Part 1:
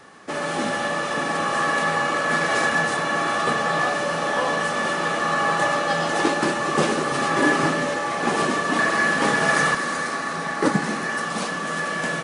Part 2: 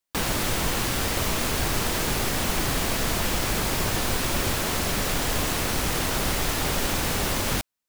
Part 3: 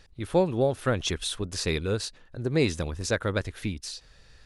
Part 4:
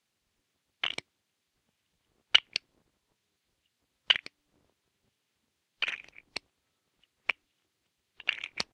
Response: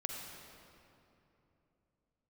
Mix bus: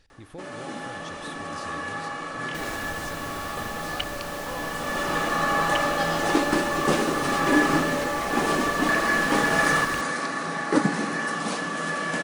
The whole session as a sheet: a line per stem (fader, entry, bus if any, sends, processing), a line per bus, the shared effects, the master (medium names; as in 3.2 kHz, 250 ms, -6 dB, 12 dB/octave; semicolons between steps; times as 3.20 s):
-4.0 dB, 0.10 s, send -12 dB, auto duck -14 dB, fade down 0.40 s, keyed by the third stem
-13.5 dB, 2.40 s, no send, none
-9.5 dB, 0.00 s, send -5.5 dB, compression 3:1, threshold -38 dBFS, peak gain reduction 15 dB
-10.5 dB, 1.65 s, no send, none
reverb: on, RT60 3.0 s, pre-delay 40 ms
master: peaking EQ 290 Hz +5.5 dB 0.22 oct